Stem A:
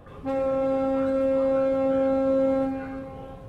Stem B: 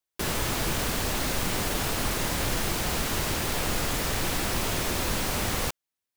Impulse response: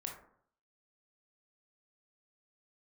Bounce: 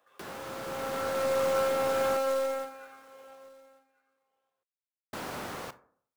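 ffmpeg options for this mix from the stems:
-filter_complex "[0:a]highpass=650,highshelf=frequency=2400:gain=9.5,acrusher=bits=3:mode=log:mix=0:aa=0.000001,volume=-9.5dB,afade=type=in:start_time=0.6:duration=0.74:silence=0.316228,afade=type=out:start_time=2.29:duration=0.48:silence=0.281838,asplit=3[link_01][link_02][link_03];[link_02]volume=-7.5dB[link_04];[link_03]volume=-21.5dB[link_05];[1:a]highpass=110,acrossover=split=230|580|1300|5300[link_06][link_07][link_08][link_09][link_10];[link_06]acompressor=threshold=-48dB:ratio=4[link_11];[link_07]acompressor=threshold=-40dB:ratio=4[link_12];[link_08]acompressor=threshold=-38dB:ratio=4[link_13];[link_09]acompressor=threshold=-45dB:ratio=4[link_14];[link_10]acompressor=threshold=-49dB:ratio=4[link_15];[link_11][link_12][link_13][link_14][link_15]amix=inputs=5:normalize=0,volume=-10.5dB,asplit=3[link_16][link_17][link_18];[link_16]atrim=end=2.17,asetpts=PTS-STARTPTS,afade=type=out:start_time=2.166:duration=0.004:curve=hsin[link_19];[link_17]atrim=start=2.17:end=5.13,asetpts=PTS-STARTPTS,volume=0[link_20];[link_18]atrim=start=5.13,asetpts=PTS-STARTPTS,afade=type=in:duration=0.004:curve=hsin[link_21];[link_19][link_20][link_21]concat=n=3:v=0:a=1,asplit=2[link_22][link_23];[link_23]volume=-6dB[link_24];[2:a]atrim=start_sample=2205[link_25];[link_04][link_24]amix=inputs=2:normalize=0[link_26];[link_26][link_25]afir=irnorm=-1:irlink=0[link_27];[link_05]aecho=0:1:1143:1[link_28];[link_01][link_22][link_27][link_28]amix=inputs=4:normalize=0,equalizer=frequency=1400:width_type=o:width=0.6:gain=3.5,dynaudnorm=framelen=160:gausssize=9:maxgain=5.5dB,aeval=exprs='0.168*(cos(1*acos(clip(val(0)/0.168,-1,1)))-cos(1*PI/2))+0.00335*(cos(8*acos(clip(val(0)/0.168,-1,1)))-cos(8*PI/2))':channel_layout=same"

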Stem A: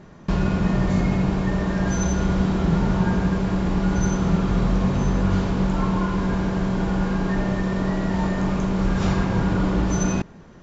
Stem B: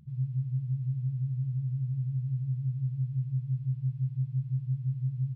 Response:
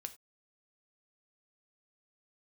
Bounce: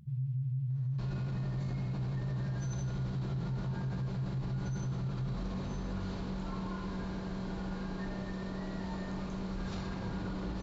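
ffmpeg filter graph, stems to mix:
-filter_complex "[0:a]equalizer=frequency=4200:width=3.4:gain=8.5,adelay=700,volume=-15.5dB[link_01];[1:a]volume=1dB[link_02];[link_01][link_02]amix=inputs=2:normalize=0,alimiter=level_in=5.5dB:limit=-24dB:level=0:latency=1:release=26,volume=-5.5dB"

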